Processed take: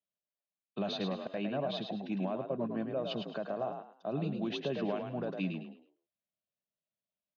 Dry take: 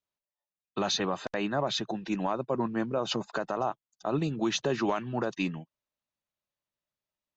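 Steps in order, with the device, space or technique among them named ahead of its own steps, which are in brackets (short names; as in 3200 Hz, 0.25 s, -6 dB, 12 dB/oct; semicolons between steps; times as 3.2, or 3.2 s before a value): frequency-shifting delay pedal into a guitar cabinet (frequency-shifting echo 0.106 s, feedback 30%, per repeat +46 Hz, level -6 dB; speaker cabinet 87–3800 Hz, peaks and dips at 190 Hz +7 dB, 340 Hz -3 dB, 630 Hz +5 dB, 910 Hz -9 dB, 1300 Hz -8 dB, 1900 Hz -7 dB); gain -6.5 dB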